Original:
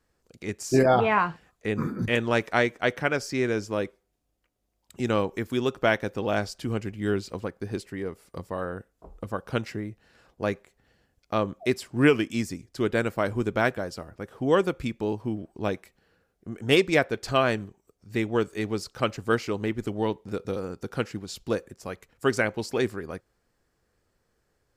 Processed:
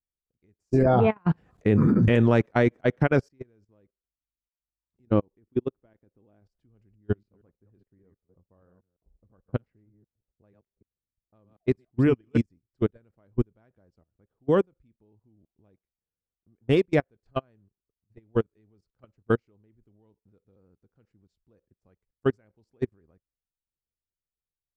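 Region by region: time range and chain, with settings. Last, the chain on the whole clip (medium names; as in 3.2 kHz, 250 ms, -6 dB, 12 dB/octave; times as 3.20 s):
0.86–3.29 s: high-pass 89 Hz + level flattener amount 70%
5.05–6.42 s: low-pass 2.9 kHz 6 dB/octave + peaking EQ 310 Hz +5 dB 1 oct + level held to a coarse grid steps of 11 dB
6.95–12.44 s: chunks repeated in reverse 155 ms, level -8 dB + level-controlled noise filter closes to 520 Hz, open at -21 dBFS
whole clip: tilt EQ -3.5 dB/octave; level held to a coarse grid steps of 17 dB; upward expansion 2.5:1, over -36 dBFS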